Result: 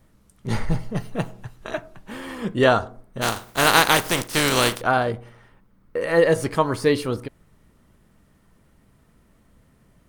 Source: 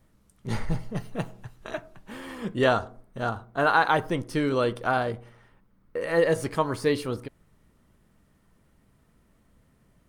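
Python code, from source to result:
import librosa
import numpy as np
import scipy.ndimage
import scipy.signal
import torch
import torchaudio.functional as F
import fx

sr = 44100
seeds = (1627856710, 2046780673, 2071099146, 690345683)

y = fx.spec_flatten(x, sr, power=0.41, at=(3.21, 4.8), fade=0.02)
y = F.gain(torch.from_numpy(y), 5.0).numpy()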